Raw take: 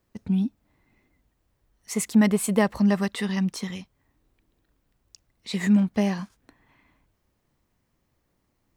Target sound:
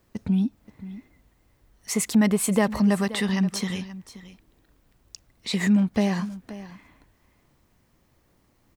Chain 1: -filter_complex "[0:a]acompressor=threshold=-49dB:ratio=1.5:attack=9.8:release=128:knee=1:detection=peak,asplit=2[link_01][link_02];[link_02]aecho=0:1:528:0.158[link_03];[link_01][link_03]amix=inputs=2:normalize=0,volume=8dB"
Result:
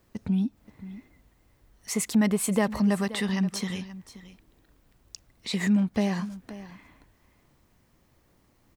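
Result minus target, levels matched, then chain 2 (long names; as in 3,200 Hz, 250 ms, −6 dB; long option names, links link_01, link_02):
downward compressor: peak gain reduction +3 dB
-filter_complex "[0:a]acompressor=threshold=-40dB:ratio=1.5:attack=9.8:release=128:knee=1:detection=peak,asplit=2[link_01][link_02];[link_02]aecho=0:1:528:0.158[link_03];[link_01][link_03]amix=inputs=2:normalize=0,volume=8dB"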